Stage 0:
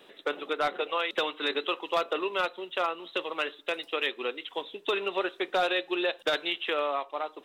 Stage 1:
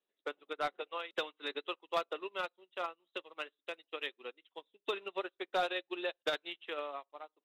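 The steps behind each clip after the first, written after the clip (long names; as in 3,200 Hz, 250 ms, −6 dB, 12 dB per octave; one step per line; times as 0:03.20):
expander for the loud parts 2.5 to 1, over −45 dBFS
level −4.5 dB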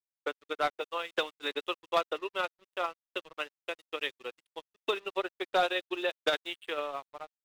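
dead-zone distortion −58.5 dBFS
level +6 dB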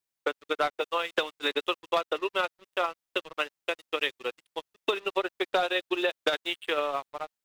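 downward compressor, threshold −30 dBFS, peak gain reduction 8.5 dB
level +7.5 dB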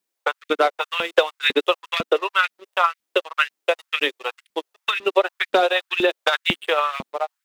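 auto-filter high-pass saw up 2 Hz 200–2,400 Hz
level +6.5 dB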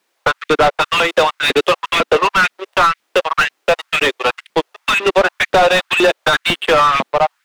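mid-hump overdrive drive 31 dB, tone 1,800 Hz, clips at −1 dBFS
level −1.5 dB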